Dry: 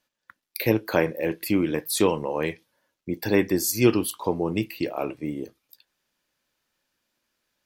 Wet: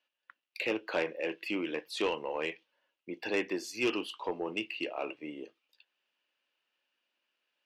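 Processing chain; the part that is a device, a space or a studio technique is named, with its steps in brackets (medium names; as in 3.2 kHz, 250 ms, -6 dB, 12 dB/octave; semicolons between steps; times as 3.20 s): intercom (band-pass 380–3800 Hz; peaking EQ 2.8 kHz +12 dB 0.34 oct; saturation -16 dBFS, distortion -15 dB); trim -6 dB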